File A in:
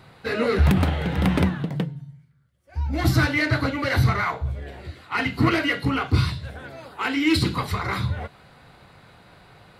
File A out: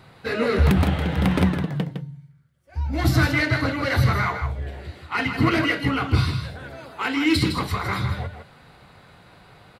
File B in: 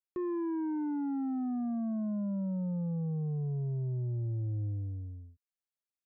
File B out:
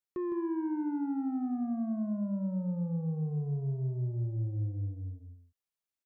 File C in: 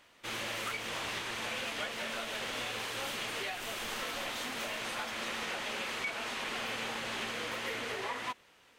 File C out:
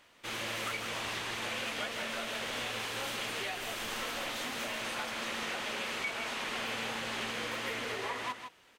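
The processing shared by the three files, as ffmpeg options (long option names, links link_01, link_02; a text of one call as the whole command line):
ffmpeg -i in.wav -af "aecho=1:1:159:0.398" out.wav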